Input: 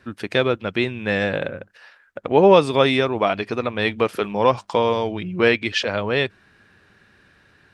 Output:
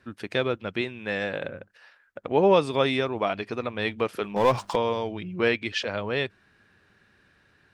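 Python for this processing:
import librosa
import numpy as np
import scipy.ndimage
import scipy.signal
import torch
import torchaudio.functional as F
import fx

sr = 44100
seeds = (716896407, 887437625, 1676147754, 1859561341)

y = fx.low_shelf(x, sr, hz=160.0, db=-9.0, at=(0.81, 1.44))
y = fx.power_curve(y, sr, exponent=0.7, at=(4.36, 4.76))
y = y * 10.0 ** (-6.5 / 20.0)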